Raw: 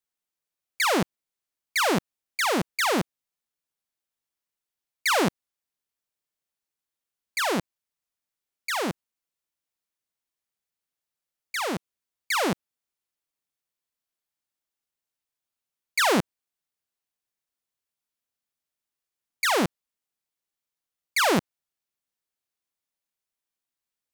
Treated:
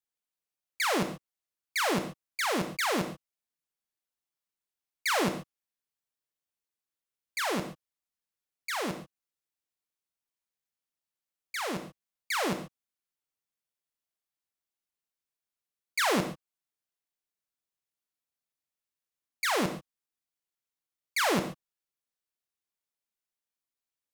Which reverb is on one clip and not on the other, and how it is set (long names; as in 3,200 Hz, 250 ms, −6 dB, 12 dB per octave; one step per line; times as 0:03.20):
reverb whose tail is shaped and stops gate 160 ms flat, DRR 7 dB
level −5.5 dB